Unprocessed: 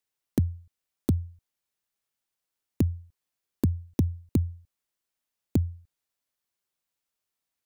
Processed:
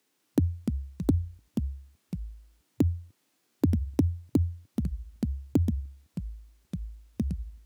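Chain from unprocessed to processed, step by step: HPF 130 Hz 24 dB/oct; high shelf 10000 Hz -5.5 dB; harmonic-percussive split harmonic +7 dB; bell 290 Hz +13 dB 0.85 oct; limiter -22 dBFS, peak gain reduction 18 dB; echoes that change speed 0.2 s, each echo -4 st, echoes 2, each echo -6 dB; gain +9 dB

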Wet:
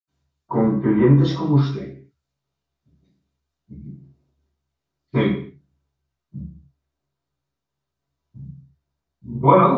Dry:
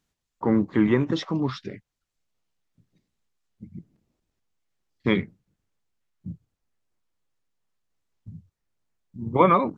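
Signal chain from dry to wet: 0.65–1.07 LPF 1600 Hz -> 2600 Hz 12 dB/oct; reverb RT60 0.50 s, pre-delay 76 ms, DRR -60 dB; gain -7 dB

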